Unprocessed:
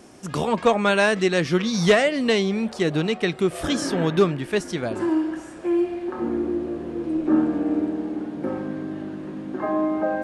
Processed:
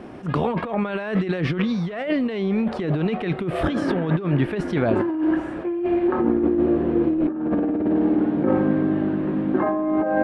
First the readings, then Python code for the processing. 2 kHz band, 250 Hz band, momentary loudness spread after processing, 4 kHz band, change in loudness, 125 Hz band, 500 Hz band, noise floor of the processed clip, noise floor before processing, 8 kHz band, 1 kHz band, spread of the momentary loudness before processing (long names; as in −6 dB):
−5.5 dB, +3.0 dB, 5 LU, −10.0 dB, +0.5 dB, +4.0 dB, −1.0 dB, −31 dBFS, −39 dBFS, below −15 dB, −0.5 dB, 11 LU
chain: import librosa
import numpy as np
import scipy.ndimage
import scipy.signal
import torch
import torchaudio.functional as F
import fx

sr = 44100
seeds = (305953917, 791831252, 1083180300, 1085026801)

y = fx.high_shelf(x, sr, hz=5400.0, db=8.0)
y = fx.over_compress(y, sr, threshold_db=-27.0, ratio=-1.0)
y = fx.air_absorb(y, sr, metres=500.0)
y = fx.attack_slew(y, sr, db_per_s=230.0)
y = F.gain(torch.from_numpy(y), 6.5).numpy()